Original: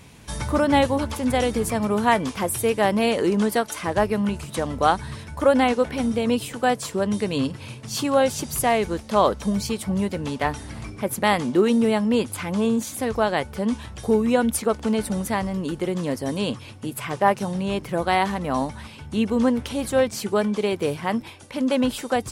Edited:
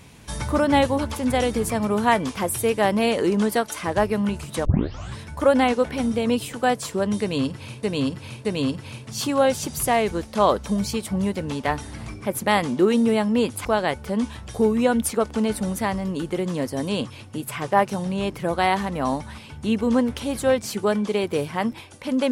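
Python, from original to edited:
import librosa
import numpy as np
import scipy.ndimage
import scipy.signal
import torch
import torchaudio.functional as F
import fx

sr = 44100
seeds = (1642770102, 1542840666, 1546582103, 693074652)

y = fx.edit(x, sr, fx.tape_start(start_s=4.65, length_s=0.52),
    fx.repeat(start_s=7.21, length_s=0.62, count=3),
    fx.cut(start_s=12.41, length_s=0.73), tone=tone)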